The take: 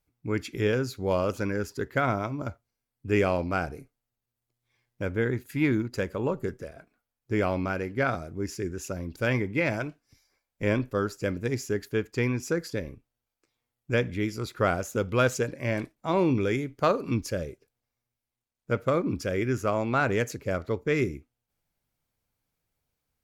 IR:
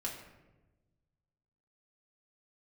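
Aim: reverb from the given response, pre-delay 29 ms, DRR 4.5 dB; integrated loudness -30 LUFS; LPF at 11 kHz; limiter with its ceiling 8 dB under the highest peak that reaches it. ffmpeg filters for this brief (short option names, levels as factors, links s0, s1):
-filter_complex "[0:a]lowpass=11000,alimiter=limit=0.126:level=0:latency=1,asplit=2[s0][s1];[1:a]atrim=start_sample=2205,adelay=29[s2];[s1][s2]afir=irnorm=-1:irlink=0,volume=0.531[s3];[s0][s3]amix=inputs=2:normalize=0,volume=0.891"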